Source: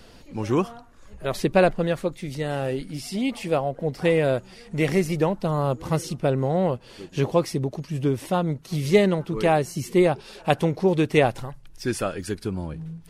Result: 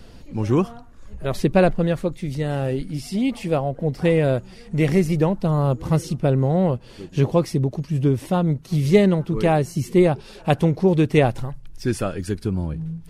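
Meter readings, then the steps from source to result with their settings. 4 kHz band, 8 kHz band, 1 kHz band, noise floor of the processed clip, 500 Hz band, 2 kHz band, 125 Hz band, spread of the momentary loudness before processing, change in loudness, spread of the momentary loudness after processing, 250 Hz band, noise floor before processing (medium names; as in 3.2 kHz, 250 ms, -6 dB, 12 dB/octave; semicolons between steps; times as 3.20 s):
-1.0 dB, -1.0 dB, 0.0 dB, -43 dBFS, +1.5 dB, -1.0 dB, +6.0 dB, 11 LU, +3.0 dB, 10 LU, +4.5 dB, -48 dBFS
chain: bass shelf 270 Hz +9.5 dB; trim -1 dB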